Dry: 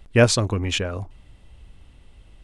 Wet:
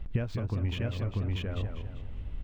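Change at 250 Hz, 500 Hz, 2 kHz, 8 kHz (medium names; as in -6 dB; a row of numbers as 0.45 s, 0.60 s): -10.0 dB, -16.5 dB, -16.5 dB, under -25 dB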